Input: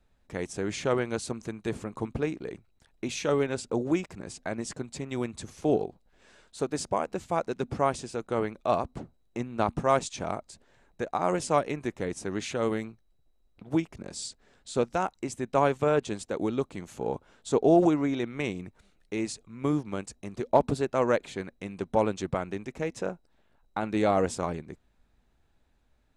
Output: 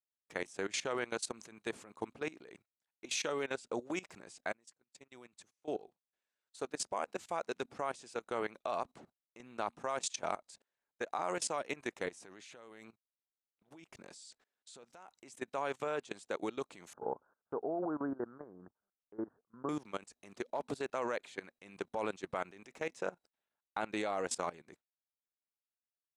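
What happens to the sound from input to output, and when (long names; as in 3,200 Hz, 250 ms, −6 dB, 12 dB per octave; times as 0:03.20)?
0:04.53–0:07.50: fade in, from −24 dB
0:12.10–0:15.35: downward compressor 4 to 1, threshold −35 dBFS
0:16.93–0:19.69: Butterworth low-pass 1,600 Hz 96 dB per octave
whole clip: high-pass filter 850 Hz 6 dB per octave; noise gate −56 dBFS, range −18 dB; output level in coarse steps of 19 dB; level +2.5 dB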